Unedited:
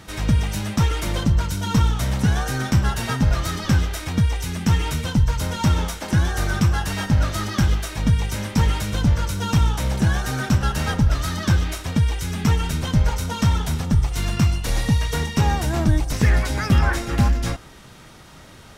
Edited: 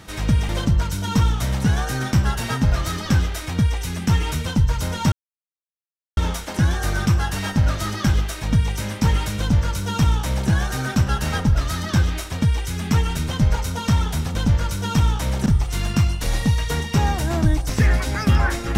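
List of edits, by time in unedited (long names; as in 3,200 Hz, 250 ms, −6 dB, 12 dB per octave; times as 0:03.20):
0:00.49–0:01.08: remove
0:05.71: splice in silence 1.05 s
0:08.93–0:10.04: duplicate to 0:13.89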